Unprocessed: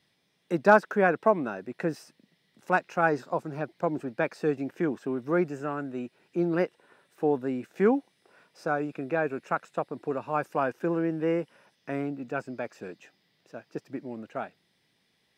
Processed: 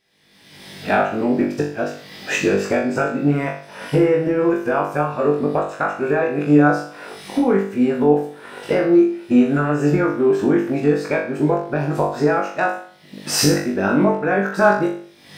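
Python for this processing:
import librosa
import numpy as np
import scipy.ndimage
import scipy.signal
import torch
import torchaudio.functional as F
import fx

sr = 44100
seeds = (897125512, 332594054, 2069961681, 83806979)

y = np.flip(x).copy()
y = fx.recorder_agc(y, sr, target_db=-12.0, rise_db_per_s=45.0, max_gain_db=30)
y = fx.room_flutter(y, sr, wall_m=3.5, rt60_s=0.5)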